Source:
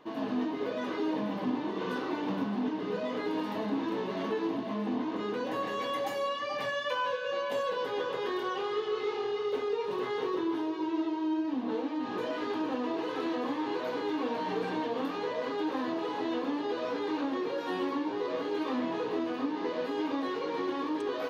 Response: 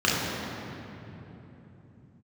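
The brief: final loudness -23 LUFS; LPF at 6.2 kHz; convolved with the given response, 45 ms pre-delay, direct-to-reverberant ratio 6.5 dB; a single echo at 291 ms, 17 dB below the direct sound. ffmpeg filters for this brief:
-filter_complex "[0:a]lowpass=6200,aecho=1:1:291:0.141,asplit=2[s0][s1];[1:a]atrim=start_sample=2205,adelay=45[s2];[s1][s2]afir=irnorm=-1:irlink=0,volume=0.0631[s3];[s0][s3]amix=inputs=2:normalize=0,volume=2.51"

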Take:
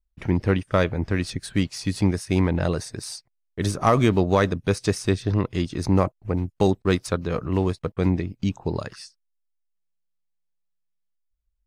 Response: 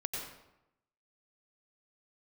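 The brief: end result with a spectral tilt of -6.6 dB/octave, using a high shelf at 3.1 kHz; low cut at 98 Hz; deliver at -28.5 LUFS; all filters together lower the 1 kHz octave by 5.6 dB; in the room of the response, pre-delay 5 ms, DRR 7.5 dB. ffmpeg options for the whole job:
-filter_complex "[0:a]highpass=98,equalizer=f=1000:t=o:g=-7,highshelf=f=3100:g=-5,asplit=2[s0][s1];[1:a]atrim=start_sample=2205,adelay=5[s2];[s1][s2]afir=irnorm=-1:irlink=0,volume=0.316[s3];[s0][s3]amix=inputs=2:normalize=0,volume=0.668"

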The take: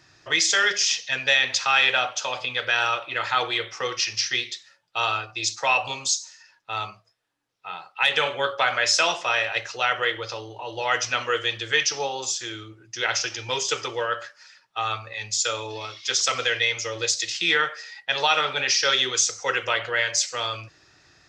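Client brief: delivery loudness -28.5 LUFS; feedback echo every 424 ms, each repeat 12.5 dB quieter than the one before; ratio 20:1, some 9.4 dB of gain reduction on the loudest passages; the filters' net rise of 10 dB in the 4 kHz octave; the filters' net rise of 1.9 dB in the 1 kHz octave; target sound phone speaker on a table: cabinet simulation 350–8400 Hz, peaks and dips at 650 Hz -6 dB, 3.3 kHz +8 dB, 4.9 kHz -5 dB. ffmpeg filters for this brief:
-af "equalizer=f=1000:t=o:g=3,equalizer=f=4000:t=o:g=6,acompressor=threshold=0.0794:ratio=20,highpass=f=350:w=0.5412,highpass=f=350:w=1.3066,equalizer=f=650:t=q:w=4:g=-6,equalizer=f=3300:t=q:w=4:g=8,equalizer=f=4900:t=q:w=4:g=-5,lowpass=f=8400:w=0.5412,lowpass=f=8400:w=1.3066,aecho=1:1:424|848|1272:0.237|0.0569|0.0137,volume=0.562"

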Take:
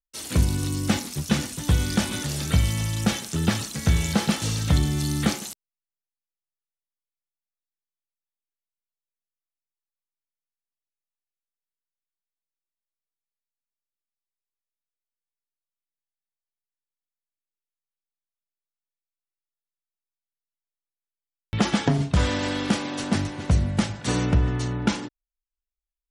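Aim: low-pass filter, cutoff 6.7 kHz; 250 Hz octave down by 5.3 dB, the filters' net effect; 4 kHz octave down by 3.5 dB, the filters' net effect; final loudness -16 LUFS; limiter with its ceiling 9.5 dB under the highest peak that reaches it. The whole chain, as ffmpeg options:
-af "lowpass=6700,equalizer=f=250:t=o:g=-7.5,equalizer=f=4000:t=o:g=-4,volume=5.01,alimiter=limit=0.531:level=0:latency=1"

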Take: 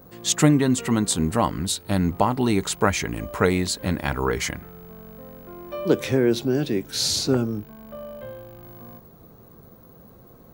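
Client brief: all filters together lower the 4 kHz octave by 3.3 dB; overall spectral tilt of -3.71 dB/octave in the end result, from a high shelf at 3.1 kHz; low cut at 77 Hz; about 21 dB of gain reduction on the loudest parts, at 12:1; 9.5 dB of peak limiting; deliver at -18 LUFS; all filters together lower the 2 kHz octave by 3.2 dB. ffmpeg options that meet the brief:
-af "highpass=77,equalizer=f=2000:t=o:g=-4.5,highshelf=f=3100:g=7,equalizer=f=4000:t=o:g=-8.5,acompressor=threshold=0.02:ratio=12,volume=12.6,alimiter=limit=0.422:level=0:latency=1"

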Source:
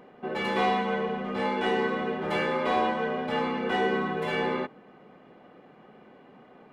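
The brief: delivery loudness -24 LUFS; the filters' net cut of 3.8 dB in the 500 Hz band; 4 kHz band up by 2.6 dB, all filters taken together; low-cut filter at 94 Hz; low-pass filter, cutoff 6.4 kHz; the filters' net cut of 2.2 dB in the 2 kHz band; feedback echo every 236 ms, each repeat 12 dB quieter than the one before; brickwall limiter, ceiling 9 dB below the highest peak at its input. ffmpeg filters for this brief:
-af "highpass=94,lowpass=6400,equalizer=f=500:t=o:g=-4.5,equalizer=f=2000:t=o:g=-4,equalizer=f=4000:t=o:g=6.5,alimiter=limit=0.0631:level=0:latency=1,aecho=1:1:236|472|708:0.251|0.0628|0.0157,volume=2.66"

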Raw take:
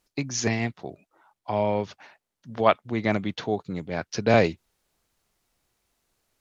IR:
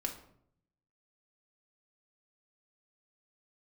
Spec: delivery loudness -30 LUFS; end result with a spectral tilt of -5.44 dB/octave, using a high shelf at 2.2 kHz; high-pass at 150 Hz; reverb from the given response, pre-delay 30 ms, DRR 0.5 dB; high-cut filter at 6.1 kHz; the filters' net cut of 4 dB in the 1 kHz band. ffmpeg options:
-filter_complex "[0:a]highpass=150,lowpass=6100,equalizer=f=1000:t=o:g=-4.5,highshelf=f=2200:g=-7,asplit=2[s0][s1];[1:a]atrim=start_sample=2205,adelay=30[s2];[s1][s2]afir=irnorm=-1:irlink=0,volume=0.841[s3];[s0][s3]amix=inputs=2:normalize=0,volume=0.596"

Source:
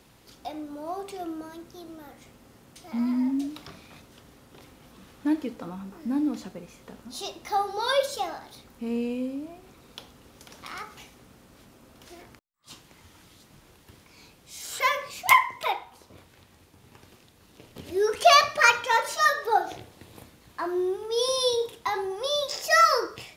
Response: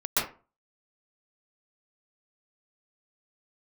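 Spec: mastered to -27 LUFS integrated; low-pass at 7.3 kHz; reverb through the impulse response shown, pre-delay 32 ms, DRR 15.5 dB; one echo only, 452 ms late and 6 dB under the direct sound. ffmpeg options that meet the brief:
-filter_complex "[0:a]lowpass=7300,aecho=1:1:452:0.501,asplit=2[s0][s1];[1:a]atrim=start_sample=2205,adelay=32[s2];[s1][s2]afir=irnorm=-1:irlink=0,volume=0.0447[s3];[s0][s3]amix=inputs=2:normalize=0,volume=0.794"

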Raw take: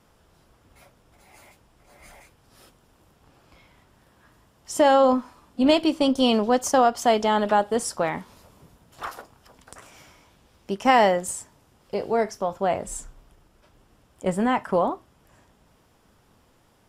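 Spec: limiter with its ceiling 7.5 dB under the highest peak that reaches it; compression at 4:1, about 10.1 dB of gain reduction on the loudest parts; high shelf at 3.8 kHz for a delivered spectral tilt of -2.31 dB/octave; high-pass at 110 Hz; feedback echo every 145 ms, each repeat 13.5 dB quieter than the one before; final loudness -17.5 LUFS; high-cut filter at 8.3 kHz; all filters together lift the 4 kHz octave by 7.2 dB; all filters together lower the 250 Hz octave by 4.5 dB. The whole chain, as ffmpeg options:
-af "highpass=110,lowpass=8300,equalizer=f=250:t=o:g=-5,highshelf=f=3800:g=4,equalizer=f=4000:t=o:g=8,acompressor=threshold=0.0562:ratio=4,alimiter=limit=0.0891:level=0:latency=1,aecho=1:1:145|290:0.211|0.0444,volume=5.62"

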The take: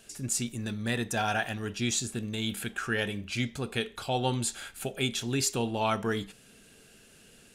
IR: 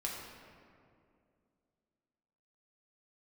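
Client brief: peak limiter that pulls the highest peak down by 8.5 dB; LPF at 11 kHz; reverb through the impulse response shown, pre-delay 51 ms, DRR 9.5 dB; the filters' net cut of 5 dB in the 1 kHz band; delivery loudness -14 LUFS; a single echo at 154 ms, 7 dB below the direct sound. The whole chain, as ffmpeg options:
-filter_complex "[0:a]lowpass=11000,equalizer=f=1000:t=o:g=-7.5,alimiter=limit=0.0631:level=0:latency=1,aecho=1:1:154:0.447,asplit=2[s0][s1];[1:a]atrim=start_sample=2205,adelay=51[s2];[s1][s2]afir=irnorm=-1:irlink=0,volume=0.266[s3];[s0][s3]amix=inputs=2:normalize=0,volume=9.44"

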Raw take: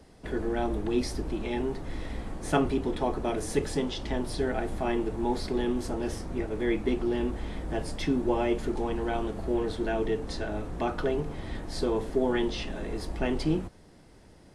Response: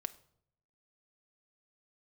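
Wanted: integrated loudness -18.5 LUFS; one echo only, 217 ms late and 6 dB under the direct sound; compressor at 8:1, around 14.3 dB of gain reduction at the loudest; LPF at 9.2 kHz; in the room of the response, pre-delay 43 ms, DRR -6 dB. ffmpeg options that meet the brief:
-filter_complex "[0:a]lowpass=9200,acompressor=threshold=0.0158:ratio=8,aecho=1:1:217:0.501,asplit=2[s0][s1];[1:a]atrim=start_sample=2205,adelay=43[s2];[s1][s2]afir=irnorm=-1:irlink=0,volume=2.37[s3];[s0][s3]amix=inputs=2:normalize=0,volume=5.62"

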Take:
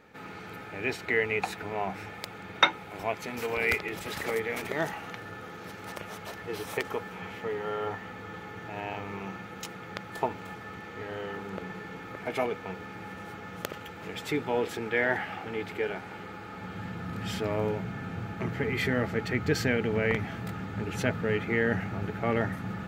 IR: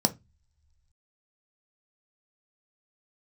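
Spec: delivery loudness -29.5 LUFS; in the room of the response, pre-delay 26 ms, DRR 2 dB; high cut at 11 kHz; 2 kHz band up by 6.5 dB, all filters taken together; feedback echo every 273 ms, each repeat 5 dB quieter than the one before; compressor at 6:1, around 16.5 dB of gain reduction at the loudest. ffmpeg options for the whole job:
-filter_complex "[0:a]lowpass=11000,equalizer=f=2000:t=o:g=7.5,acompressor=threshold=0.0316:ratio=6,aecho=1:1:273|546|819|1092|1365|1638|1911:0.562|0.315|0.176|0.0988|0.0553|0.031|0.0173,asplit=2[s0][s1];[1:a]atrim=start_sample=2205,adelay=26[s2];[s1][s2]afir=irnorm=-1:irlink=0,volume=0.266[s3];[s0][s3]amix=inputs=2:normalize=0,volume=1.12"

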